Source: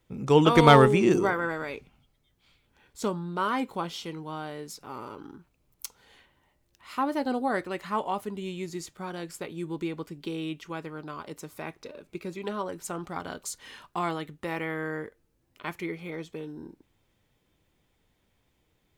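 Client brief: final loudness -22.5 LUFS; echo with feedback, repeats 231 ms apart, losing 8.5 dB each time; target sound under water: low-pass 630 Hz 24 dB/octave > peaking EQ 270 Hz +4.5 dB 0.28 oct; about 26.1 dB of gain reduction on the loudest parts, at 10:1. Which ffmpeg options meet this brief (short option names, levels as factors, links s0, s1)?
-af "acompressor=threshold=0.0112:ratio=10,lowpass=f=630:w=0.5412,lowpass=f=630:w=1.3066,equalizer=f=270:t=o:w=0.28:g=4.5,aecho=1:1:231|462|693|924:0.376|0.143|0.0543|0.0206,volume=13.3"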